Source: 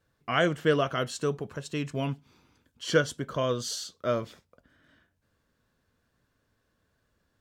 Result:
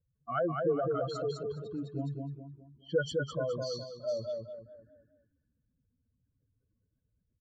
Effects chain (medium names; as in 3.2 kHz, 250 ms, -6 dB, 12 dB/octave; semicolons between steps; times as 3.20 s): spectral contrast enhancement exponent 3.3; feedback delay 208 ms, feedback 39%, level -3.5 dB; level-controlled noise filter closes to 810 Hz, open at -21.5 dBFS; trim -5.5 dB